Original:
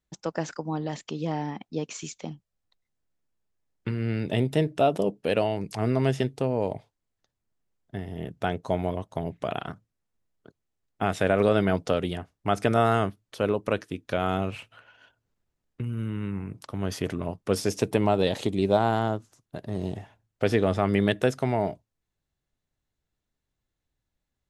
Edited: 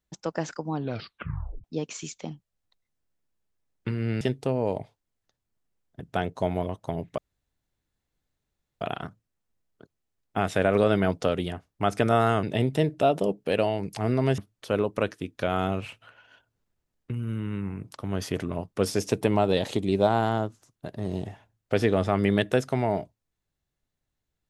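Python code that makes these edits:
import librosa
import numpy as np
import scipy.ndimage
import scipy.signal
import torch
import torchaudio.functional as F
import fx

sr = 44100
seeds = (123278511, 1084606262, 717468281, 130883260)

y = fx.edit(x, sr, fx.tape_stop(start_s=0.74, length_s=0.9),
    fx.move(start_s=4.21, length_s=1.95, to_s=13.08),
    fx.cut(start_s=7.95, length_s=0.33),
    fx.insert_room_tone(at_s=9.46, length_s=1.63), tone=tone)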